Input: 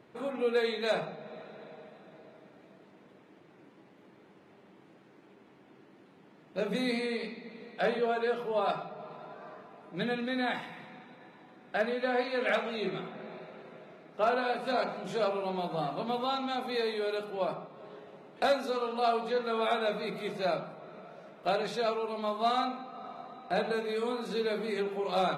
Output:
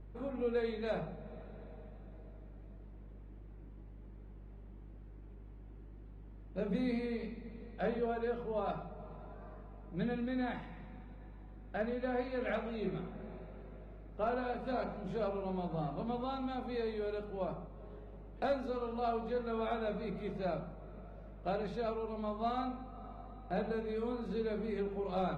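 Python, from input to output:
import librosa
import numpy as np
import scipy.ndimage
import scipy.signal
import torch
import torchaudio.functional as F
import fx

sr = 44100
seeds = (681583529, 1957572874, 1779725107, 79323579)

y = fx.add_hum(x, sr, base_hz=50, snr_db=25)
y = fx.riaa(y, sr, side='playback')
y = y * 10.0 ** (-8.5 / 20.0)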